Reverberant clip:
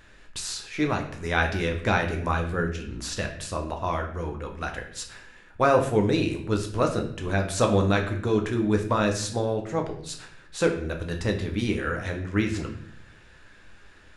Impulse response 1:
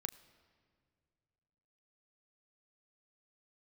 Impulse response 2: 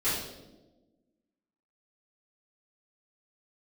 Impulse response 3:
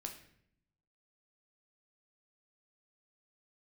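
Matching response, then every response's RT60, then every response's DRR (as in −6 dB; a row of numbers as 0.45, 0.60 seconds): 3; 2.1, 1.2, 0.65 seconds; 10.0, −14.5, 3.0 decibels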